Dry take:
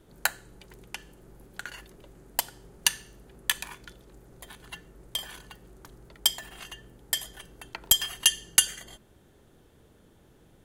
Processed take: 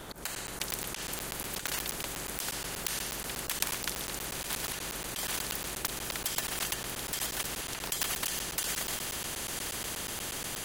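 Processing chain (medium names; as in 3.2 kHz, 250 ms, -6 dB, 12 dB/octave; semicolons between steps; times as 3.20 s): bass shelf 370 Hz +6.5 dB; in parallel at -1.5 dB: compression, threshold -42 dBFS, peak gain reduction 26 dB; on the sum: slow attack 128 ms; level rider gain up to 9.5 dB; on a send: echo that smears into a reverb 948 ms, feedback 66%, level -15.5 dB; on the sum: crackling interface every 0.12 s, samples 512, zero, from 0.35 s; spectrum-flattening compressor 4:1; trim -1.5 dB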